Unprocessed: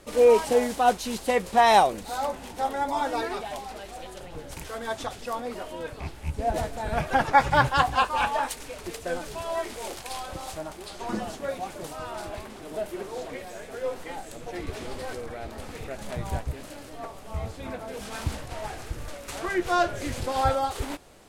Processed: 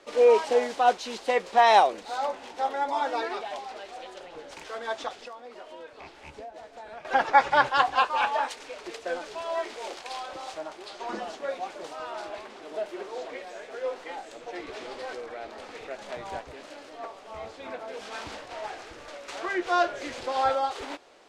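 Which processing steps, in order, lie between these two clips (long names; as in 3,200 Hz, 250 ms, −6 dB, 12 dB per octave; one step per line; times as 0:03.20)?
three-way crossover with the lows and the highs turned down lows −22 dB, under 300 Hz, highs −23 dB, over 6,600 Hz
0:05.11–0:07.05: downward compressor 10 to 1, threshold −40 dBFS, peak gain reduction 18.5 dB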